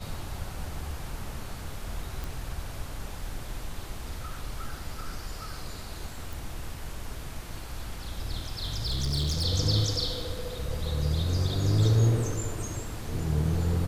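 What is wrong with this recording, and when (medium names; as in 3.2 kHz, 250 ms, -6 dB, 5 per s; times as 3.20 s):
2.24 s: pop
6.33 s: pop
8.46–9.46 s: clipped -24 dBFS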